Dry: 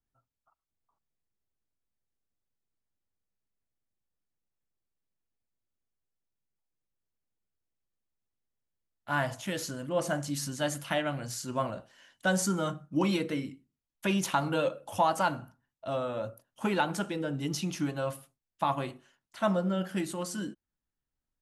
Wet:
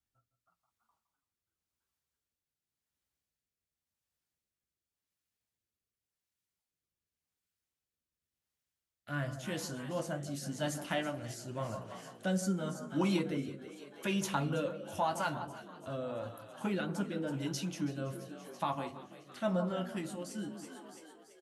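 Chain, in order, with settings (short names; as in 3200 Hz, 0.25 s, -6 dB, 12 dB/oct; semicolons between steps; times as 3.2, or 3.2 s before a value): HPF 56 Hz; low shelf 88 Hz +10.5 dB; echo with dull and thin repeats by turns 0.162 s, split 1300 Hz, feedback 53%, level -11 dB; flange 0.17 Hz, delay 9.4 ms, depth 4.9 ms, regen -45%; frequency-shifting echo 0.333 s, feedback 60%, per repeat +52 Hz, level -16 dB; rotary speaker horn 0.9 Hz; mismatched tape noise reduction encoder only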